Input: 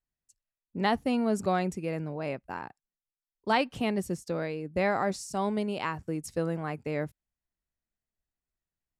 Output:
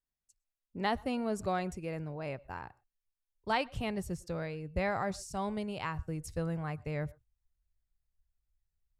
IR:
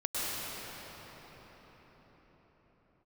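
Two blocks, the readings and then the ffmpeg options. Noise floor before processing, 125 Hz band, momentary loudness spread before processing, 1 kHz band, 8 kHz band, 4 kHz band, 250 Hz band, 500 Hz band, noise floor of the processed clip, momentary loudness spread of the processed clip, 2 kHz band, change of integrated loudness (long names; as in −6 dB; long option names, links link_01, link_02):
below −85 dBFS, −2.0 dB, 10 LU, −5.0 dB, −5.0 dB, −4.5 dB, −6.5 dB, −6.0 dB, below −85 dBFS, 9 LU, −4.5 dB, −5.5 dB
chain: -filter_complex "[0:a]asubboost=boost=11.5:cutoff=80,asplit=2[link_01][link_02];[1:a]atrim=start_sample=2205,afade=type=out:start_time=0.18:duration=0.01,atrim=end_sample=8379,highshelf=frequency=4200:gain=-9.5[link_03];[link_02][link_03]afir=irnorm=-1:irlink=0,volume=-21.5dB[link_04];[link_01][link_04]amix=inputs=2:normalize=0,volume=-5dB"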